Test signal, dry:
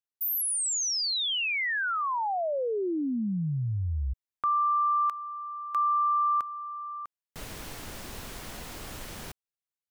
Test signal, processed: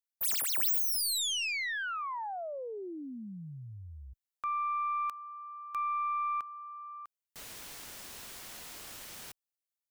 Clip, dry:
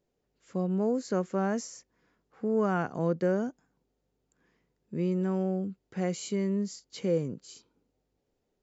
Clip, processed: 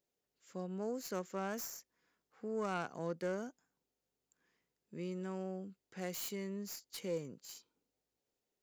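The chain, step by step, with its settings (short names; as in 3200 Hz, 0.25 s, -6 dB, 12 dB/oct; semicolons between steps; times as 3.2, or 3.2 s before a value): tracing distortion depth 0.1 ms; tilt +2.5 dB/oct; gain -8 dB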